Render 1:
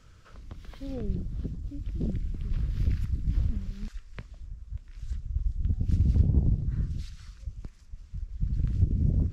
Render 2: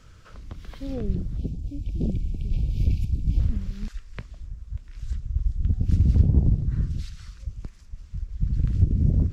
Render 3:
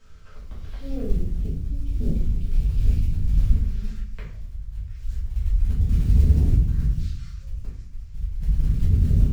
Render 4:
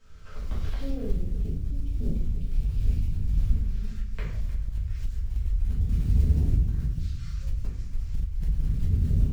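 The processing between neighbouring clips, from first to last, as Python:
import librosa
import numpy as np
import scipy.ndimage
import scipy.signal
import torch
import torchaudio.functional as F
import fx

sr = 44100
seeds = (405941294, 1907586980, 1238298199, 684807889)

y1 = fx.spec_erase(x, sr, start_s=1.37, length_s=2.03, low_hz=920.0, high_hz=2200.0)
y1 = y1 * librosa.db_to_amplitude(4.5)
y2 = fx.quant_float(y1, sr, bits=4)
y2 = fx.room_shoebox(y2, sr, seeds[0], volume_m3=72.0, walls='mixed', distance_m=1.6)
y2 = y2 * librosa.db_to_amplitude(-9.0)
y3 = fx.recorder_agc(y2, sr, target_db=-15.5, rise_db_per_s=25.0, max_gain_db=30)
y3 = y3 + 10.0 ** (-15.5 / 20.0) * np.pad(y3, (int(307 * sr / 1000.0), 0))[:len(y3)]
y3 = y3 * librosa.db_to_amplitude(-5.0)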